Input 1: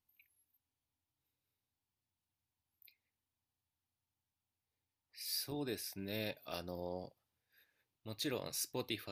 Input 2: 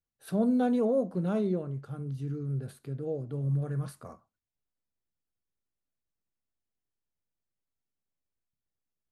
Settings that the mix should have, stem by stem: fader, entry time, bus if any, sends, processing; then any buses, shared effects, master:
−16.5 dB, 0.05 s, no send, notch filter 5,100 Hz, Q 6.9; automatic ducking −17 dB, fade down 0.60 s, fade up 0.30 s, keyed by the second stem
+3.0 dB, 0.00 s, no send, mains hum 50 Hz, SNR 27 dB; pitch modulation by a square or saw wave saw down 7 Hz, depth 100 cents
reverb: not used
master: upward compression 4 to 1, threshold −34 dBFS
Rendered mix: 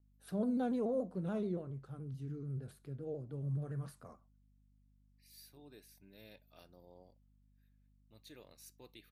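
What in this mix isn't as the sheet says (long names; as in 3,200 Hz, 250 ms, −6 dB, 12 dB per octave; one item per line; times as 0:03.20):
stem 2 +3.0 dB → −8.5 dB
master: missing upward compression 4 to 1, threshold −34 dBFS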